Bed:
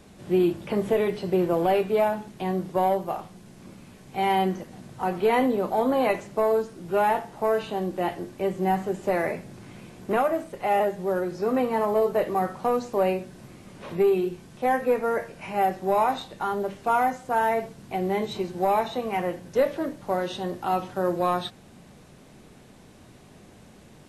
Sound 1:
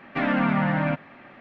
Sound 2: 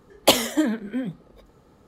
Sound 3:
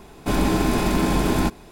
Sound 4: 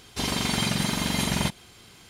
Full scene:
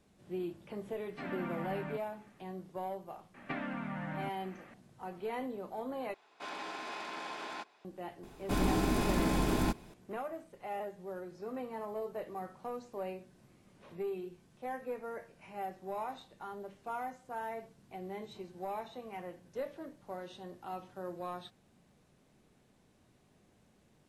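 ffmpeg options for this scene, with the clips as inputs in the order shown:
-filter_complex "[1:a]asplit=2[a][b];[3:a]asplit=2[c][d];[0:a]volume=-17dB[e];[b]acompressor=threshold=-30dB:ratio=10:attack=51:release=246:knee=1:detection=rms[f];[c]highpass=790,lowpass=4.5k[g];[e]asplit=2[h][i];[h]atrim=end=6.144[j];[g]atrim=end=1.71,asetpts=PTS-STARTPTS,volume=-13dB[k];[i]atrim=start=7.846[l];[a]atrim=end=1.4,asetpts=PTS-STARTPTS,volume=-18dB,afade=t=in:d=0.004:c=hsin,afade=t=out:st=1.396:d=0.004:c=hsin,adelay=1020[m];[f]atrim=end=1.4,asetpts=PTS-STARTPTS,volume=-7.5dB,afade=t=in:d=0.004:c=hsin,afade=t=out:st=1.396:d=0.004:c=hsin,adelay=3340[n];[d]atrim=end=1.71,asetpts=PTS-STARTPTS,volume=-10dB,afade=t=in:d=0.004:c=hsin,afade=t=out:st=1.706:d=0.004:c=hsin,adelay=8230[o];[j][k]acrossfade=d=0.004:c1=hsin:c2=hsin[p];[p][l]acrossfade=d=0.004:c1=hsin:c2=hsin[q];[q][m][n][o]amix=inputs=4:normalize=0"

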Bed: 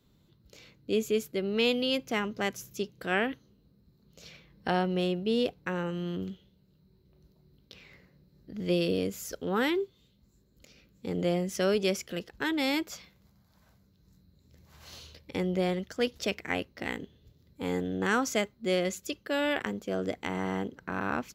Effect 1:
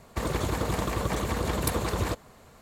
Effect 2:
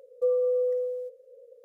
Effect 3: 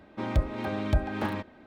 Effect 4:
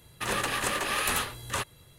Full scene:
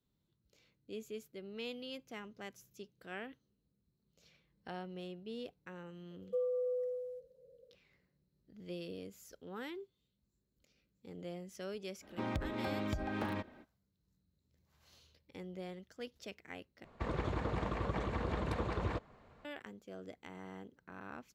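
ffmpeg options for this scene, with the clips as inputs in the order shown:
-filter_complex "[0:a]volume=-17dB[a];[3:a]acompressor=threshold=-37dB:ratio=6:attack=50:release=25:knee=1:detection=peak[b];[1:a]lowpass=2.8k[c];[a]asplit=2[d][e];[d]atrim=end=16.844[f];[c]atrim=end=2.61,asetpts=PTS-STARTPTS,volume=-8dB[g];[e]atrim=start=19.446[h];[2:a]atrim=end=1.64,asetpts=PTS-STARTPTS,volume=-10.5dB,afade=t=in:d=0.004:c=hsin,afade=t=out:st=1.636:d=0.004:c=hsin,adelay=6110[i];[b]atrim=end=1.66,asetpts=PTS-STARTPTS,volume=-4.5dB,afade=t=in:d=0.05,afade=t=out:st=1.61:d=0.05,adelay=12000[j];[f][g]acrossfade=d=0.004:c1=hsin:c2=hsin[k];[k][h]acrossfade=d=0.004:c1=hsin:c2=hsin[l];[l][i][j]amix=inputs=3:normalize=0"

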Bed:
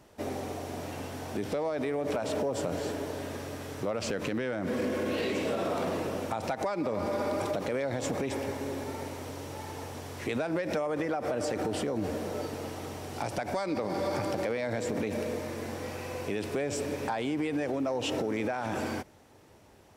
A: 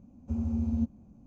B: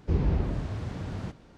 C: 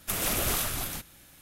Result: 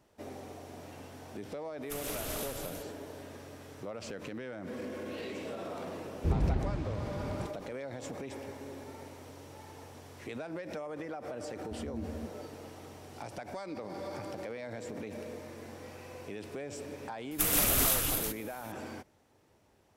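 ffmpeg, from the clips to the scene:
-filter_complex "[3:a]asplit=2[a][b];[0:a]volume=-9.5dB[c];[a]aresample=32000,aresample=44100[d];[b]highshelf=f=11k:g=8.5[e];[d]atrim=end=1.41,asetpts=PTS-STARTPTS,volume=-11dB,afade=t=in:d=0.004:c=hsin,afade=t=out:st=1.406:d=0.004:c=hsin,adelay=1820[f];[2:a]atrim=end=1.57,asetpts=PTS-STARTPTS,volume=-3.5dB,afade=t=in:d=0.004:c=hsin,afade=t=out:st=1.566:d=0.004:c=hsin,adelay=6160[g];[1:a]atrim=end=1.26,asetpts=PTS-STARTPTS,volume=-13dB,afade=t=in:d=0.004:c=hsin,afade=t=out:st=1.256:d=0.004:c=hsin,adelay=11410[h];[e]atrim=end=1.41,asetpts=PTS-STARTPTS,volume=-1.5dB,afade=t=in:d=0.004:c=hsin,afade=t=out:st=1.406:d=0.004:c=hsin,adelay=17310[i];[c][f][g][h][i]amix=inputs=5:normalize=0"

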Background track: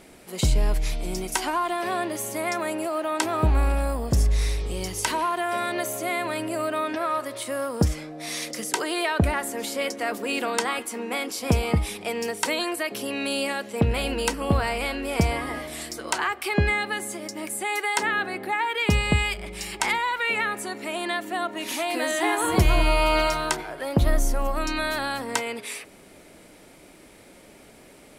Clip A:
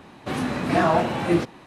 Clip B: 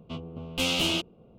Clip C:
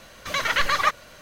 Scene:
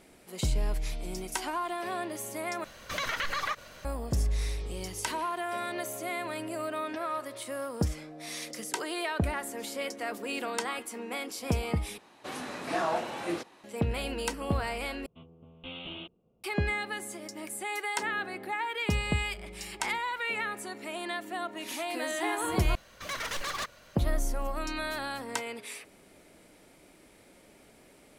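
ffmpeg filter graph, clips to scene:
-filter_complex "[3:a]asplit=2[a][b];[0:a]volume=-7.5dB[c];[a]acompressor=threshold=-25dB:ratio=6:attack=3.2:release=140:knee=1:detection=peak[d];[1:a]bass=f=250:g=-14,treble=f=4k:g=6[e];[2:a]aresample=8000,aresample=44100[f];[b]aeval=exprs='0.1*(abs(mod(val(0)/0.1+3,4)-2)-1)':c=same[g];[c]asplit=5[h][i][j][k][l];[h]atrim=end=2.644[m];[d]atrim=end=1.21,asetpts=PTS-STARTPTS,volume=-2.5dB[n];[i]atrim=start=3.846:end=11.984[o];[e]atrim=end=1.66,asetpts=PTS-STARTPTS,volume=-9dB[p];[j]atrim=start=13.636:end=15.064[q];[f]atrim=end=1.38,asetpts=PTS-STARTPTS,volume=-15dB[r];[k]atrim=start=16.436:end=22.754[s];[g]atrim=end=1.21,asetpts=PTS-STARTPTS,volume=-8.5dB[t];[l]atrim=start=23.956[u];[m][n]acrossfade=d=0.004:c1=hsin:c2=hsin[v];[v][o]acrossfade=d=0.004:c1=hsin:c2=hsin[w];[w][p]acrossfade=d=0.004:c1=hsin:c2=hsin[x];[x][q]acrossfade=d=0.004:c1=hsin:c2=hsin[y];[y][r]acrossfade=d=0.004:c1=hsin:c2=hsin[z];[z][s]acrossfade=d=0.004:c1=hsin:c2=hsin[aa];[aa][t]acrossfade=d=0.004:c1=hsin:c2=hsin[ab];[ab][u]acrossfade=d=0.004:c1=hsin:c2=hsin"

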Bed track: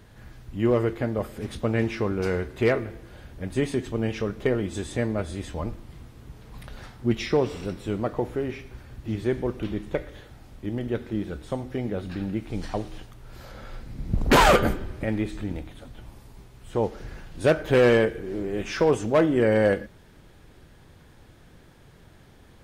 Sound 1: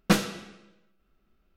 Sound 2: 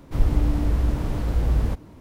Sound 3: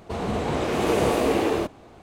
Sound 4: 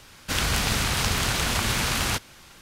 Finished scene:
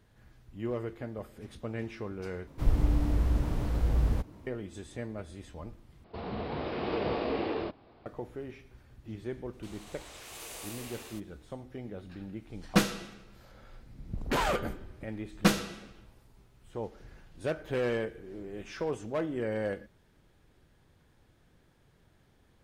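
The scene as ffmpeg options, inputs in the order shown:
-filter_complex "[3:a]asplit=2[a][b];[1:a]asplit=2[c][d];[0:a]volume=-12.5dB[e];[a]aresample=11025,aresample=44100[f];[b]aderivative[g];[e]asplit=3[h][i][j];[h]atrim=end=2.474[k];[2:a]atrim=end=2,asetpts=PTS-STARTPTS,volume=-5.5dB[l];[i]atrim=start=4.466:end=6.044[m];[f]atrim=end=2.02,asetpts=PTS-STARTPTS,volume=-10dB[n];[j]atrim=start=8.056[o];[g]atrim=end=2.02,asetpts=PTS-STARTPTS,volume=-6.5dB,afade=t=in:d=0.004:c=hsin,afade=t=out:st=2.016:d=0.004:c=hsin,adelay=9530[p];[c]atrim=end=1.56,asetpts=PTS-STARTPTS,volume=-3dB,afade=t=in:d=0.004:c=hsin,afade=t=out:st=1.556:d=0.004:c=hsin,adelay=12660[q];[d]atrim=end=1.56,asetpts=PTS-STARTPTS,volume=-2.5dB,afade=t=in:d=0.004:c=hsin,afade=t=out:st=1.556:d=0.004:c=hsin,adelay=15350[r];[k][l]acrossfade=d=0.004:c1=hsin:c2=hsin[s];[s][m]acrossfade=d=0.004:c1=hsin:c2=hsin[t];[t][n]acrossfade=d=0.004:c1=hsin:c2=hsin[u];[u][o]acrossfade=d=0.004:c1=hsin:c2=hsin[v];[v][p][q][r]amix=inputs=4:normalize=0"

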